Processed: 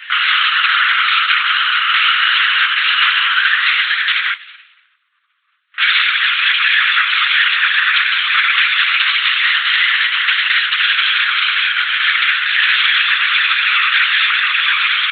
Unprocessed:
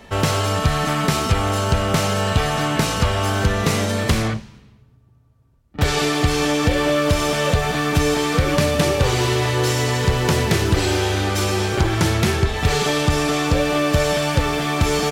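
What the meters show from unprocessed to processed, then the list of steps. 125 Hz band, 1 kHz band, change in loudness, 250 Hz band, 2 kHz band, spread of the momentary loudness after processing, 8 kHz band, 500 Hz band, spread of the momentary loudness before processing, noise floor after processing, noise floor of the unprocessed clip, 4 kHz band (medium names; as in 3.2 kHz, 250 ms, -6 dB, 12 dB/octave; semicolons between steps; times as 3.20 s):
under -40 dB, +3.5 dB, +7.5 dB, under -40 dB, +14.5 dB, 2 LU, under -35 dB, under -40 dB, 2 LU, -60 dBFS, -53 dBFS, +12.5 dB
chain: in parallel at +1 dB: compression, threshold -28 dBFS, peak gain reduction 15 dB; on the sum: LPC vocoder at 8 kHz whisper; steep high-pass 1.4 kHz 48 dB/octave; loudness maximiser +14.5 dB; trim -1 dB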